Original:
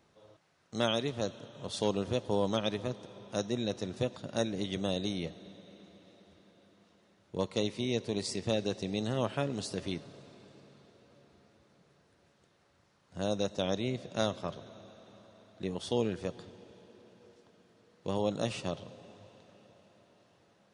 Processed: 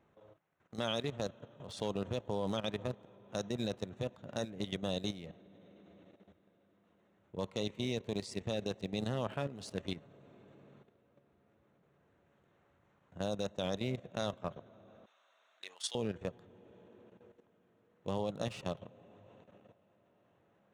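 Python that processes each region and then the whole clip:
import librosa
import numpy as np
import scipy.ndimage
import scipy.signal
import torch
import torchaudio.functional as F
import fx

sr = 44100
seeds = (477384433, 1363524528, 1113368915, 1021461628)

y = fx.chain(x, sr, fx.highpass(hz=1100.0, slope=12),
    fx.tilt_eq(slope=3.0), at=(15.06, 15.95))
y = fx.wiener(y, sr, points=9)
y = fx.dynamic_eq(y, sr, hz=320.0, q=1.8, threshold_db=-48.0, ratio=4.0, max_db=-4)
y = fx.level_steps(y, sr, step_db=12)
y = F.gain(torch.from_numpy(y), 1.0).numpy()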